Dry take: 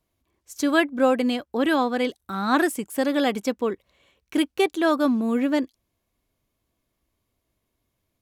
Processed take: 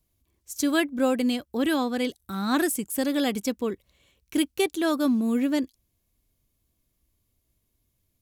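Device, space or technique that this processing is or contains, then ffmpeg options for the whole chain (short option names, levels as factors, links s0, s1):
smiley-face EQ: -af "lowshelf=f=110:g=7,equalizer=f=970:t=o:w=2.8:g=-7,highshelf=f=6600:g=7.5"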